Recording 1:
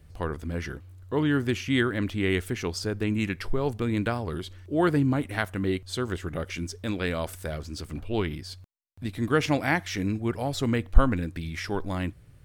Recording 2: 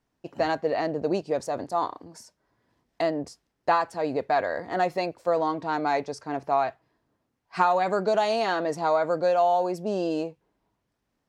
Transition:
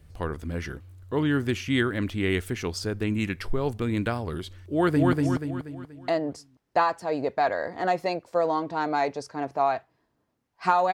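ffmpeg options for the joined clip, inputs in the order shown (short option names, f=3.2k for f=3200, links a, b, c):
-filter_complex "[0:a]apad=whole_dur=10.93,atrim=end=10.93,atrim=end=5.132[a];[1:a]atrim=start=2.048:end=7.85[b];[a][b]acrossfade=d=0.004:c1=hsin:c2=hsin,asplit=2[c][d];[d]afade=t=in:st=4.72:d=0.01,afade=t=out:st=5.13:d=0.01,aecho=0:1:240|480|720|960|1200|1440:0.794328|0.357448|0.160851|0.0723832|0.0325724|0.0146576[e];[c][e]amix=inputs=2:normalize=0"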